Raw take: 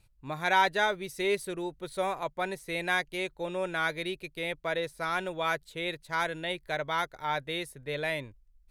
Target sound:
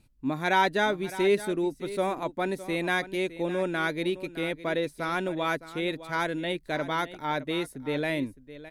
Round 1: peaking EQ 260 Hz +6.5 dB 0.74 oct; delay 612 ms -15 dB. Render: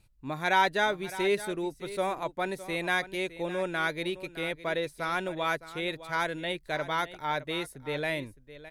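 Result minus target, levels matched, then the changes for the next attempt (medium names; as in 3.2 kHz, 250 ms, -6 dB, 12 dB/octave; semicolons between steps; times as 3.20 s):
250 Hz band -4.0 dB
change: peaking EQ 260 Hz +18.5 dB 0.74 oct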